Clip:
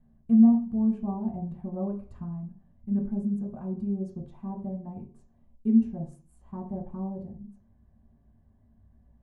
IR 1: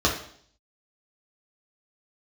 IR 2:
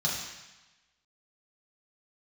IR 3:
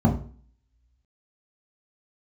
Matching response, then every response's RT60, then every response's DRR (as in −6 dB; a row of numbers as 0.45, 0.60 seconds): 3; 0.60, 1.1, 0.45 seconds; −3.0, −5.0, −2.5 decibels